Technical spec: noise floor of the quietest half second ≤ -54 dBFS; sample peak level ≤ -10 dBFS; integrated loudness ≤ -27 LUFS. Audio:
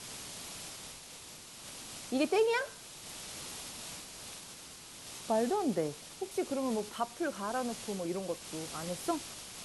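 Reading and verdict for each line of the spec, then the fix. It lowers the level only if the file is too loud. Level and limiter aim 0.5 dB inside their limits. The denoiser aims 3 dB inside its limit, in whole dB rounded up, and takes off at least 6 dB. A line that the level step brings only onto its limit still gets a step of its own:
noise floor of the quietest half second -50 dBFS: fail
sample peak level -18.5 dBFS: OK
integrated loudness -36.5 LUFS: OK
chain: denoiser 7 dB, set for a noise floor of -50 dBFS

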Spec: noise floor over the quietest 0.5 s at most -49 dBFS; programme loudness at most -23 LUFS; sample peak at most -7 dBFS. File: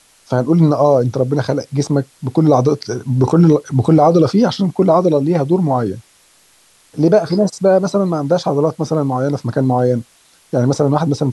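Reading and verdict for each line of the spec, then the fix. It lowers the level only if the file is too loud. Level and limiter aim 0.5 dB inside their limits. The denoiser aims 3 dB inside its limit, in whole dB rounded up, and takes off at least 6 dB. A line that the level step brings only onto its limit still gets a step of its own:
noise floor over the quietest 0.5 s -52 dBFS: OK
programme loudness -15.0 LUFS: fail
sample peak -2.5 dBFS: fail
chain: gain -8.5 dB

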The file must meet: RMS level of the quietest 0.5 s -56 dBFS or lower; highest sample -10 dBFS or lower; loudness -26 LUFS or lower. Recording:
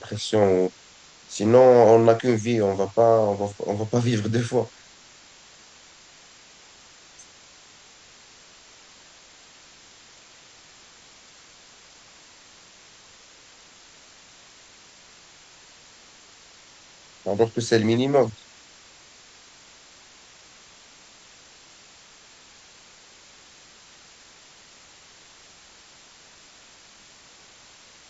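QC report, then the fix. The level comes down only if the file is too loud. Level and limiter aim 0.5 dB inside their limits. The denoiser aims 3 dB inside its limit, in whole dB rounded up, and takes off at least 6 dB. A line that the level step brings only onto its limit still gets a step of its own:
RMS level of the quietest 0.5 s -51 dBFS: fail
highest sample -4.0 dBFS: fail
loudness -20.5 LUFS: fail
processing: gain -6 dB; limiter -10.5 dBFS

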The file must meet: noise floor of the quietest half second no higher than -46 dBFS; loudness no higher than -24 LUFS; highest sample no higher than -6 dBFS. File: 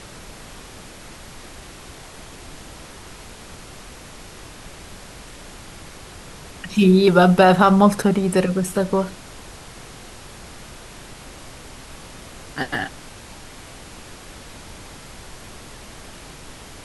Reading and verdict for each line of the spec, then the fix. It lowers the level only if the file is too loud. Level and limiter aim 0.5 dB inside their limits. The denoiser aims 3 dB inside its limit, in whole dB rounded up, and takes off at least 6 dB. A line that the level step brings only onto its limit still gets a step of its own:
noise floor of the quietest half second -40 dBFS: fail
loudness -17.0 LUFS: fail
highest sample -2.0 dBFS: fail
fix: gain -7.5 dB

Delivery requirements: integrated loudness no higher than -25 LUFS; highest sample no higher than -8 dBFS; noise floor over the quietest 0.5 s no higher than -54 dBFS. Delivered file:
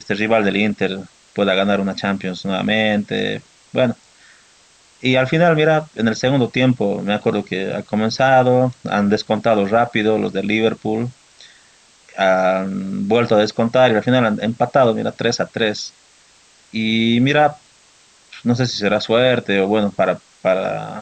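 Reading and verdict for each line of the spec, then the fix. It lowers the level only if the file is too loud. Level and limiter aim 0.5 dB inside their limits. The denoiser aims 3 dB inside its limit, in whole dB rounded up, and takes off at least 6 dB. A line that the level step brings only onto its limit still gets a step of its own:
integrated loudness -17.5 LUFS: fail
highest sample -3.5 dBFS: fail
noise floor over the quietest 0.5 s -52 dBFS: fail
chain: gain -8 dB

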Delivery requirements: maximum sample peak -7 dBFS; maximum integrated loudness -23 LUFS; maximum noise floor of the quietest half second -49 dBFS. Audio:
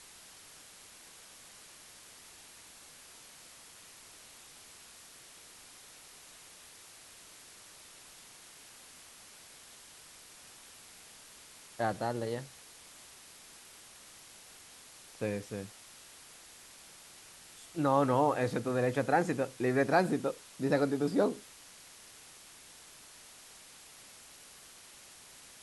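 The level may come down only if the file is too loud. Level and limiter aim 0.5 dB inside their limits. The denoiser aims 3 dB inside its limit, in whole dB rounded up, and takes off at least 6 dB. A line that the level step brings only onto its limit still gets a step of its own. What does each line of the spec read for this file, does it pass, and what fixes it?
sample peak -13.5 dBFS: OK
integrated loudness -31.5 LUFS: OK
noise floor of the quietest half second -54 dBFS: OK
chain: none

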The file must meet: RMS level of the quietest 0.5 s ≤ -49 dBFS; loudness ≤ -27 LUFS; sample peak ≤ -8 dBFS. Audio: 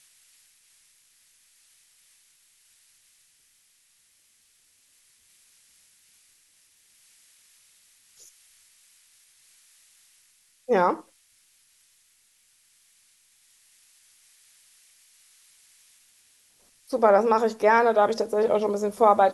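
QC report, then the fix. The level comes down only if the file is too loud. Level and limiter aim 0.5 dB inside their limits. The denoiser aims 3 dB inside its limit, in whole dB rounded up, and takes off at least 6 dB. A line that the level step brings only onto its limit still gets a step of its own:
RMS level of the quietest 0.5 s -64 dBFS: OK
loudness -22.0 LUFS: fail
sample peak -5.5 dBFS: fail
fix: gain -5.5 dB

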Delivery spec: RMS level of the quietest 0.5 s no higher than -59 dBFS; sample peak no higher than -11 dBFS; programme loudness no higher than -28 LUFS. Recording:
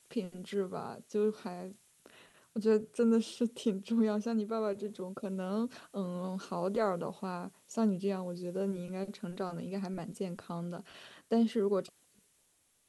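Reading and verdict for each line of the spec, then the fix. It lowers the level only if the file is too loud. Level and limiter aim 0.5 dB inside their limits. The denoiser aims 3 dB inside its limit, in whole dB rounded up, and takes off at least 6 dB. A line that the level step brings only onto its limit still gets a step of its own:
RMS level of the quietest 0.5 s -72 dBFS: OK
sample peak -18.0 dBFS: OK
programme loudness -35.0 LUFS: OK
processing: none

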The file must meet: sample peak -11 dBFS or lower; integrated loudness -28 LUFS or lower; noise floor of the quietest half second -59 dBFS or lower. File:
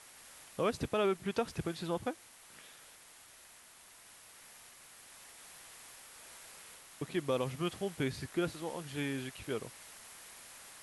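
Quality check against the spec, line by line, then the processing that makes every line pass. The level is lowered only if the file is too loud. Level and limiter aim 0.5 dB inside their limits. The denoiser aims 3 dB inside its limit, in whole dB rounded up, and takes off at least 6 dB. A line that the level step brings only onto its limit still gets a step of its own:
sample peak -20.5 dBFS: OK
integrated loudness -37.0 LUFS: OK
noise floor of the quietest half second -58 dBFS: fail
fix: denoiser 6 dB, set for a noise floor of -58 dBFS

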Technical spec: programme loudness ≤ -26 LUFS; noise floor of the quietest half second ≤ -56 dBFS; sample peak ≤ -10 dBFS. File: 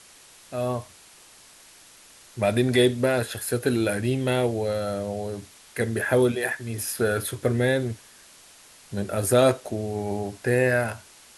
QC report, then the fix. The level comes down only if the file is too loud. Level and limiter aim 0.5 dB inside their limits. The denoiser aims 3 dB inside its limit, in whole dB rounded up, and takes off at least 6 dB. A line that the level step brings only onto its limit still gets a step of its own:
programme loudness -25.0 LUFS: fail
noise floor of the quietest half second -51 dBFS: fail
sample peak -8.0 dBFS: fail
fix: denoiser 7 dB, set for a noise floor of -51 dBFS; gain -1.5 dB; limiter -10.5 dBFS

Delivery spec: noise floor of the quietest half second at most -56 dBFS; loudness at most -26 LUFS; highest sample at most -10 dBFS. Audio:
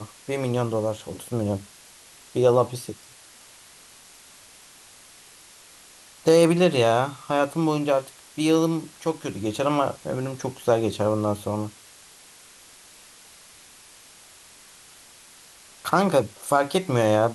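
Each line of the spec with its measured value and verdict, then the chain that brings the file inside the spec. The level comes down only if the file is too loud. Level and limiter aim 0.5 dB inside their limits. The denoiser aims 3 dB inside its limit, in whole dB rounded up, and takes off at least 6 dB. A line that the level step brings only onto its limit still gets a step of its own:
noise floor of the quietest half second -50 dBFS: fail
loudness -23.5 LUFS: fail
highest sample -5.5 dBFS: fail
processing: denoiser 6 dB, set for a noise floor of -50 dBFS; gain -3 dB; limiter -10.5 dBFS

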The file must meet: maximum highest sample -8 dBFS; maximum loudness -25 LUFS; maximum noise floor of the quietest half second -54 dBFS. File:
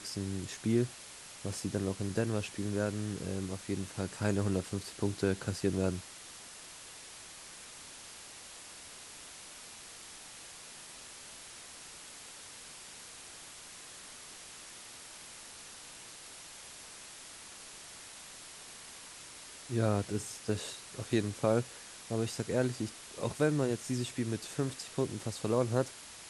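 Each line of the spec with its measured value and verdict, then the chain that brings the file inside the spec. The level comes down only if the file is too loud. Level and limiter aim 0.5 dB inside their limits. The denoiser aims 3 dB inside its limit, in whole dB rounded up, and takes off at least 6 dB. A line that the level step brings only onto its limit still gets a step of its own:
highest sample -15.0 dBFS: OK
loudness -37.5 LUFS: OK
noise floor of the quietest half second -50 dBFS: fail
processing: denoiser 7 dB, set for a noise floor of -50 dBFS

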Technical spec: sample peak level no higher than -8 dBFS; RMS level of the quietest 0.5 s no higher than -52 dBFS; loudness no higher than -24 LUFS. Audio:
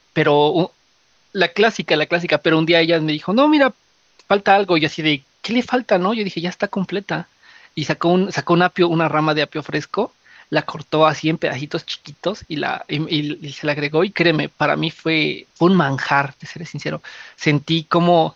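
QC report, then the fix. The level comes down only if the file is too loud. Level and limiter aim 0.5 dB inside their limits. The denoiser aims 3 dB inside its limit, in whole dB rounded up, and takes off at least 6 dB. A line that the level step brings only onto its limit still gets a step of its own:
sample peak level -1.5 dBFS: fail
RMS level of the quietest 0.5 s -59 dBFS: OK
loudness -18.5 LUFS: fail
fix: gain -6 dB; limiter -8.5 dBFS

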